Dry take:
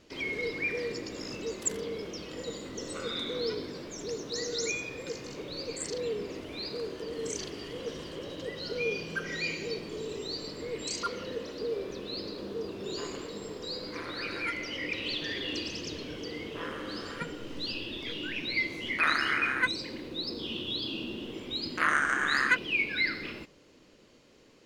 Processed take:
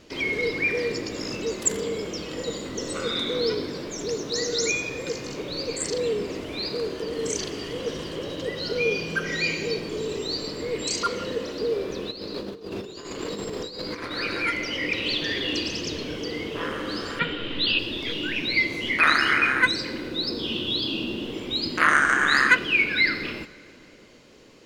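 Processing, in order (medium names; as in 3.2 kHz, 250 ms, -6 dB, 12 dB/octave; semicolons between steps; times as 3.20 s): 12.11–14.11 s: compressor with a negative ratio -41 dBFS, ratio -0.5; 17.19–17.79 s: FFT filter 850 Hz 0 dB, 3.6 kHz +11 dB, 5.7 kHz -16 dB; plate-style reverb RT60 2.6 s, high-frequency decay 0.8×, DRR 17 dB; trim +7.5 dB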